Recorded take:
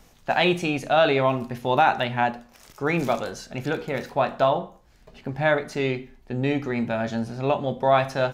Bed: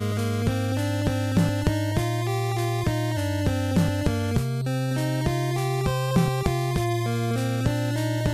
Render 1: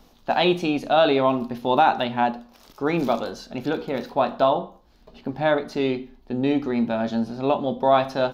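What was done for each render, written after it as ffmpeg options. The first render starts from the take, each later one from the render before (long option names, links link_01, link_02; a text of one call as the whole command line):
ffmpeg -i in.wav -af "equalizer=frequency=125:width_type=o:width=1:gain=-7,equalizer=frequency=250:width_type=o:width=1:gain=6,equalizer=frequency=1000:width_type=o:width=1:gain=3,equalizer=frequency=2000:width_type=o:width=1:gain=-7,equalizer=frequency=4000:width_type=o:width=1:gain=6,equalizer=frequency=8000:width_type=o:width=1:gain=-10" out.wav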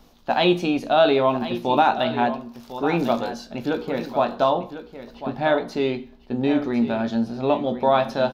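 ffmpeg -i in.wav -filter_complex "[0:a]asplit=2[link_01][link_02];[link_02]adelay=17,volume=-11dB[link_03];[link_01][link_03]amix=inputs=2:normalize=0,aecho=1:1:1050:0.251" out.wav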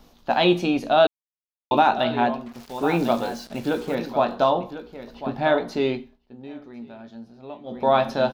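ffmpeg -i in.wav -filter_complex "[0:a]asettb=1/sr,asplit=3[link_01][link_02][link_03];[link_01]atrim=end=2.464[link_04];[link_02]atrim=start=2.46:end=3.95,asetpts=PTS-STARTPTS,afade=type=in:duration=0.004:curve=qsin,afade=type=out:start_time=1.486:duration=0.004:curve=qsin,acrusher=bits=6:mix=0:aa=0.5[link_05];[link_03]atrim=start=3.946[link_06];[link_04][link_05]acrossfade=duration=0.004:curve1=hsin:curve2=qsin[link_07];[link_07][link_06]acrossfade=duration=0.004:curve1=qsin:curve2=hsin,asplit=5[link_08][link_09][link_10][link_11][link_12];[link_08]atrim=end=1.07,asetpts=PTS-STARTPTS,afade=type=out:start_time=1.066:duration=0.004:curve=hsin[link_13];[link_09]atrim=start=1.07:end=1.71,asetpts=PTS-STARTPTS,volume=0[link_14];[link_10]atrim=start=1.71:end=6.2,asetpts=PTS-STARTPTS,afade=type=in:duration=0.004:curve=hsin,afade=type=out:start_time=4.22:duration=0.27:silence=0.133352[link_15];[link_11]atrim=start=6.2:end=7.64,asetpts=PTS-STARTPTS,volume=-17.5dB[link_16];[link_12]atrim=start=7.64,asetpts=PTS-STARTPTS,afade=type=in:duration=0.27:silence=0.133352[link_17];[link_13][link_14][link_15][link_16][link_17]concat=n=5:v=0:a=1" out.wav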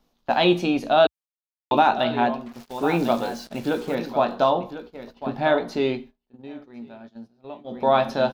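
ffmpeg -i in.wav -af "equalizer=frequency=67:width_type=o:width=0.59:gain=-8,agate=range=-14dB:threshold=-41dB:ratio=16:detection=peak" out.wav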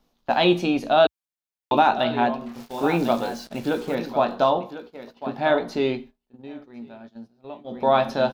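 ffmpeg -i in.wav -filter_complex "[0:a]asettb=1/sr,asplit=3[link_01][link_02][link_03];[link_01]atrim=end=2.394[link_04];[link_02]atrim=start=2.39:end=2.87,asetpts=PTS-STARTPTS,afade=type=in:duration=0.004:curve=qsin,afade=type=out:start_time=0.476:duration=0.004:curve=qsin,asplit=2[link_05][link_06];[link_06]adelay=29,volume=-3dB[link_07];[link_05][link_07]amix=inputs=2:normalize=0,atrim=end_sample=21168[link_08];[link_03]atrim=start=2.866[link_09];[link_04][link_08]acrossfade=duration=0.004:curve1=hsin:curve2=qsin[link_10];[link_10][link_09]acrossfade=duration=0.004:curve1=qsin:curve2=hsin,asettb=1/sr,asplit=3[link_11][link_12][link_13];[link_11]atrim=end=4.584[link_14];[link_12]atrim=start=4.58:end=5.5,asetpts=PTS-STARTPTS,afade=type=in:duration=0.004:curve=qsin,afade=type=out:start_time=0.916:duration=0.004:curve=qsin,highpass=frequency=180:poles=1[link_15];[link_13]atrim=start=5.496[link_16];[link_14][link_15]acrossfade=duration=0.004:curve1=hsin:curve2=qsin[link_17];[link_17][link_16]acrossfade=duration=0.004:curve1=qsin:curve2=hsin" out.wav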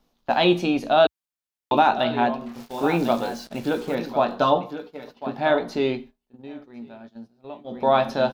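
ffmpeg -i in.wav -filter_complex "[0:a]asettb=1/sr,asplit=3[link_01][link_02][link_03];[link_01]atrim=end=4.404[link_04];[link_02]atrim=start=4.4:end=5.16,asetpts=PTS-STARTPTS,afade=type=in:duration=0.004:curve=qsin,afade=type=out:start_time=0.756:duration=0.004:curve=qsin,aecho=1:1:6.8:0.7,atrim=end_sample=33516[link_05];[link_03]atrim=start=5.156[link_06];[link_04][link_05]acrossfade=duration=0.004:curve1=hsin:curve2=qsin[link_07];[link_07][link_06]acrossfade=duration=0.004:curve1=qsin:curve2=hsin" out.wav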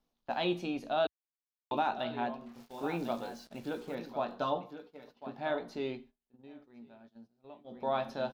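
ffmpeg -i in.wav -af "volume=-13.5dB" out.wav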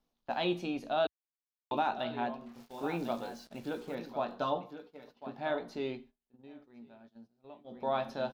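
ffmpeg -i in.wav -af anull out.wav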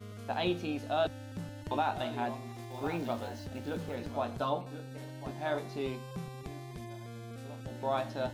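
ffmpeg -i in.wav -i bed.wav -filter_complex "[1:a]volume=-20dB[link_01];[0:a][link_01]amix=inputs=2:normalize=0" out.wav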